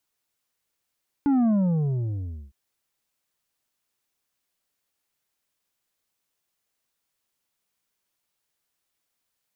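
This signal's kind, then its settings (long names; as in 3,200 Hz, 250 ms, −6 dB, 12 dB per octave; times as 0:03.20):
bass drop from 290 Hz, over 1.26 s, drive 6.5 dB, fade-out 1.05 s, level −18.5 dB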